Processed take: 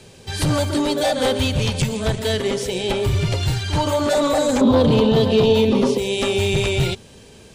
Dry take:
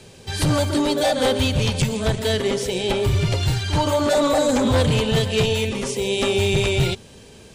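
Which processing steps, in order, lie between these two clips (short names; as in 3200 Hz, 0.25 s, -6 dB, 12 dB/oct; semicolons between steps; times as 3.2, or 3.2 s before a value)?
4.61–5.98 graphic EQ 250/500/1000/2000/4000/8000 Hz +12/+6/+8/-6/+7/-11 dB; limiter -7.5 dBFS, peak gain reduction 7.5 dB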